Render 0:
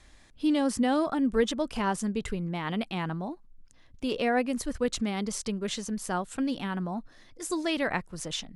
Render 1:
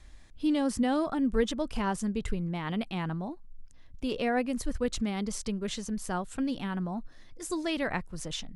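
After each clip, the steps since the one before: bass shelf 110 Hz +10.5 dB; trim -3 dB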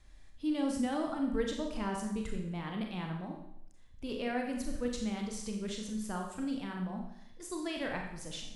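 Schroeder reverb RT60 0.74 s, combs from 29 ms, DRR 1.5 dB; trim -7.5 dB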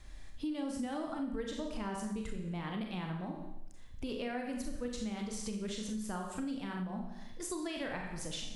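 compression 4:1, threshold -44 dBFS, peak gain reduction 15 dB; trim +7 dB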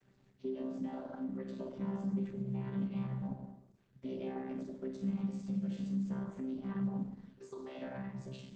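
vocoder on a held chord bare fifth, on C3; trim +1.5 dB; Opus 12 kbps 48 kHz

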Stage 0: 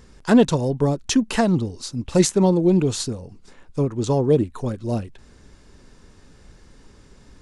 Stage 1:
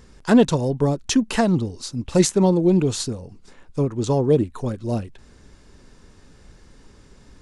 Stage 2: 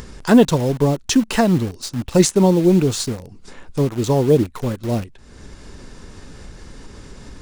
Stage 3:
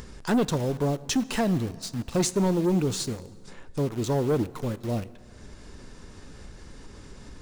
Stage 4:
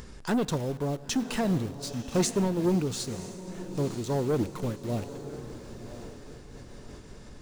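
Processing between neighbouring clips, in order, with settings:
no audible change
in parallel at -4.5 dB: bit crusher 5-bit; on the sum: upward compressor, threshold -24 dBFS; trim -1 dB
saturation -11.5 dBFS, distortion -12 dB; plate-style reverb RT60 2.1 s, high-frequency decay 0.6×, DRR 17 dB; trim -6.5 dB
echo that smears into a reverb 1016 ms, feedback 42%, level -12 dB; random flutter of the level, depth 55%

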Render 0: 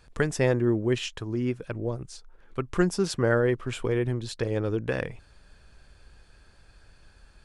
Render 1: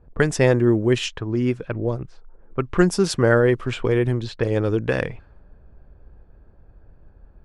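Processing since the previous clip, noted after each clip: level-controlled noise filter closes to 560 Hz, open at -23 dBFS; trim +6.5 dB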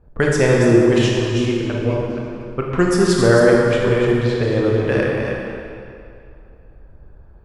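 chunks repeated in reverse 243 ms, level -6.5 dB; reverberation RT60 2.5 s, pre-delay 22 ms, DRR -2 dB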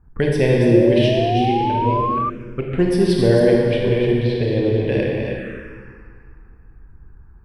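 touch-sensitive phaser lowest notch 540 Hz, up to 1.3 kHz, full sweep at -17.5 dBFS; painted sound rise, 0.70–2.30 s, 510–1200 Hz -21 dBFS

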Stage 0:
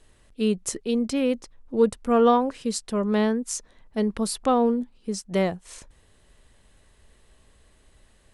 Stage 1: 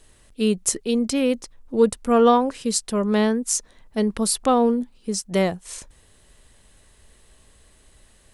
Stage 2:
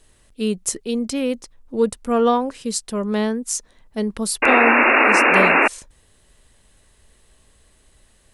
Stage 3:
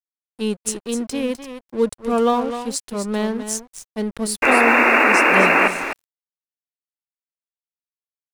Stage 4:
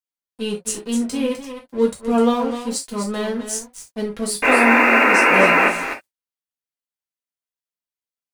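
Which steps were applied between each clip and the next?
treble shelf 5.2 kHz +8 dB; trim +2.5 dB
painted sound noise, 4.42–5.68 s, 220–2800 Hz -13 dBFS; trim -1.5 dB
delay 254 ms -9 dB; crossover distortion -35.5 dBFS
reverberation, pre-delay 3 ms, DRR -2.5 dB; trim -4 dB

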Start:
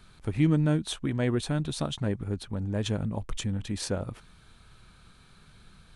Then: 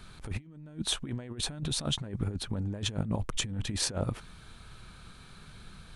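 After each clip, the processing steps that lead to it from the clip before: compressor with a negative ratio -33 dBFS, ratio -0.5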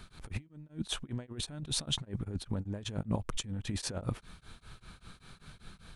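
tremolo of two beating tones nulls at 5.1 Hz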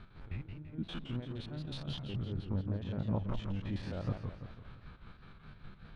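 spectrogram pixelated in time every 50 ms; distance through air 360 m; modulated delay 168 ms, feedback 48%, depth 201 cents, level -6 dB; trim +1 dB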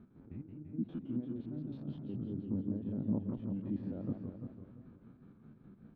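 band-pass filter 260 Hz, Q 2.5; feedback delay 345 ms, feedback 26%, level -9 dB; trim +6.5 dB

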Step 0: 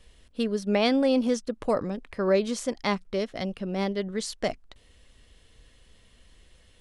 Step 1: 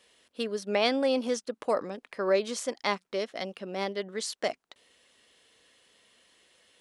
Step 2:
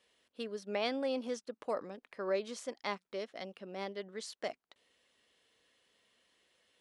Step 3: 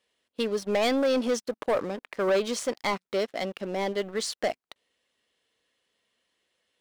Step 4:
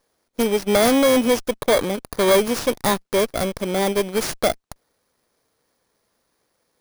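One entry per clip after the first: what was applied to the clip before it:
Bessel high-pass 420 Hz, order 2
treble shelf 6.6 kHz -6 dB; trim -8.5 dB
waveshaping leveller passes 3; trim +2.5 dB
bit-reversed sample order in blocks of 16 samples; sliding maximum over 3 samples; trim +8.5 dB

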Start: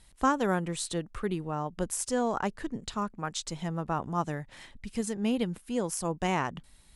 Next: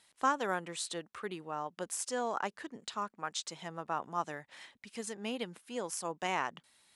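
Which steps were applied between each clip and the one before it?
frequency weighting A; trim -3 dB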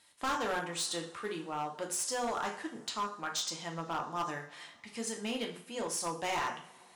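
dynamic bell 5.4 kHz, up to +5 dB, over -54 dBFS, Q 1.4; two-slope reverb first 0.44 s, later 4 s, from -28 dB, DRR 1 dB; overload inside the chain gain 29 dB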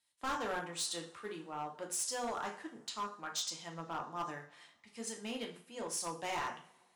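three bands expanded up and down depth 40%; trim -4.5 dB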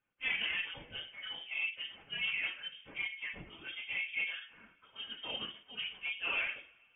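phase randomisation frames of 50 ms; small resonant body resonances 730/1200 Hz, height 8 dB, ringing for 30 ms; frequency inversion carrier 3.4 kHz

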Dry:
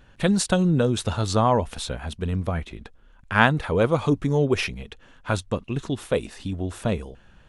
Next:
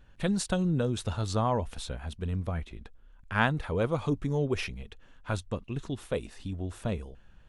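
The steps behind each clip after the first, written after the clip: bass shelf 73 Hz +9 dB; trim -8.5 dB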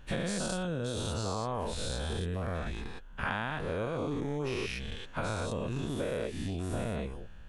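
every event in the spectrogram widened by 240 ms; compression 10:1, threshold -30 dBFS, peak gain reduction 15 dB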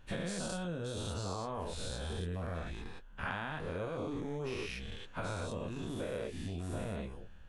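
flange 0.99 Hz, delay 9.6 ms, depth 3.1 ms, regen -45%; trim -1 dB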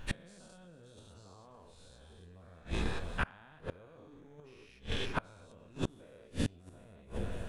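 echo whose repeats swap between lows and highs 169 ms, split 1.2 kHz, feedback 79%, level -14 dB; inverted gate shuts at -30 dBFS, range -28 dB; trim +10.5 dB

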